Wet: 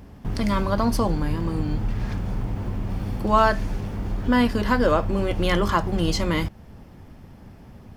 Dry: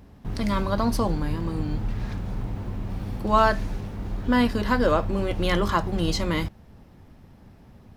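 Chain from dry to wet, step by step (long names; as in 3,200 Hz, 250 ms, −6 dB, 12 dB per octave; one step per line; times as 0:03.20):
notch filter 3,900 Hz, Q 14
in parallel at −2 dB: downward compressor, threshold −31 dBFS, peak gain reduction 16.5 dB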